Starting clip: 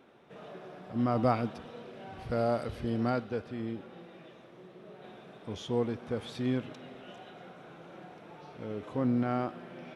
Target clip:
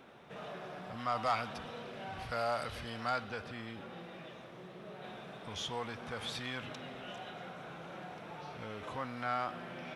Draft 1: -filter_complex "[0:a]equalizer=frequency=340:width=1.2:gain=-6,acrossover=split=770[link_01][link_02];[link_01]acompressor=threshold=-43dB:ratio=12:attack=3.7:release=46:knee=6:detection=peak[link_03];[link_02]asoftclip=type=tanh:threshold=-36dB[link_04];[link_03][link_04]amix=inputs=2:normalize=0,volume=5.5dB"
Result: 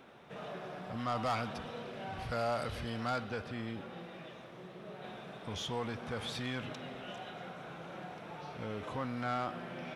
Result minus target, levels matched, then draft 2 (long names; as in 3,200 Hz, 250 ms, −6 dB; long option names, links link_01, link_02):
downward compressor: peak gain reduction −6 dB; soft clipping: distortion +6 dB
-filter_complex "[0:a]equalizer=frequency=340:width=1.2:gain=-6,acrossover=split=770[link_01][link_02];[link_01]acompressor=threshold=-49.5dB:ratio=12:attack=3.7:release=46:knee=6:detection=peak[link_03];[link_02]asoftclip=type=tanh:threshold=-30dB[link_04];[link_03][link_04]amix=inputs=2:normalize=0,volume=5.5dB"